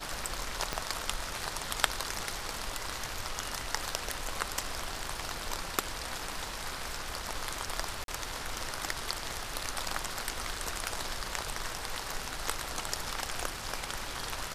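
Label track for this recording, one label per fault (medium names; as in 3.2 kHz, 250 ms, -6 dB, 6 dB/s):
0.730000	0.730000	pop -15 dBFS
8.040000	8.080000	dropout 42 ms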